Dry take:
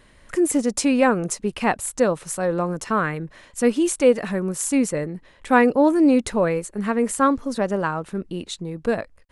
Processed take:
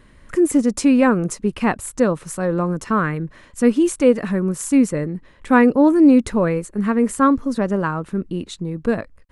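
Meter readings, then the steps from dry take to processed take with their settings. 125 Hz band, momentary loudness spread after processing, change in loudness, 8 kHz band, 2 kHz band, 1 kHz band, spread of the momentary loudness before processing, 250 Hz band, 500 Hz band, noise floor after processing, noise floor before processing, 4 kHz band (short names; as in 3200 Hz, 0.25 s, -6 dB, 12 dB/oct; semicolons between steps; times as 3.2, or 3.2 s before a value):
+5.5 dB, 12 LU, +3.0 dB, -2.5 dB, +0.5 dB, +0.5 dB, 12 LU, +5.0 dB, +1.0 dB, -49 dBFS, -53 dBFS, n/a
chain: EQ curve 270 Hz 0 dB, 760 Hz -8 dB, 1100 Hz -3 dB, 3500 Hz -8 dB; gain +5.5 dB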